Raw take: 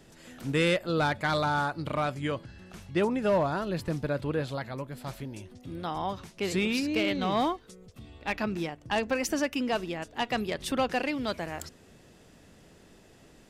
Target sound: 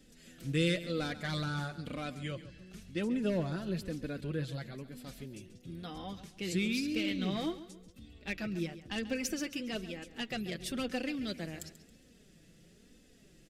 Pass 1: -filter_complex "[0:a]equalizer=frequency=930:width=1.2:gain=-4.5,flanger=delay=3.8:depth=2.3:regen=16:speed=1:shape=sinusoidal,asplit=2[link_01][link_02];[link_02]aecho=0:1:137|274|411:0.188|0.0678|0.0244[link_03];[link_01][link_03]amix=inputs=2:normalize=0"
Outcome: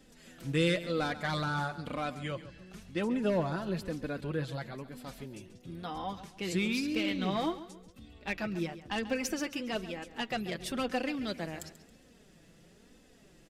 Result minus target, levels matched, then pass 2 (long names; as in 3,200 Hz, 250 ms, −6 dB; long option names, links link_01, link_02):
1,000 Hz band +6.0 dB
-filter_complex "[0:a]equalizer=frequency=930:width=1.2:gain=-16,flanger=delay=3.8:depth=2.3:regen=16:speed=1:shape=sinusoidal,asplit=2[link_01][link_02];[link_02]aecho=0:1:137|274|411:0.188|0.0678|0.0244[link_03];[link_01][link_03]amix=inputs=2:normalize=0"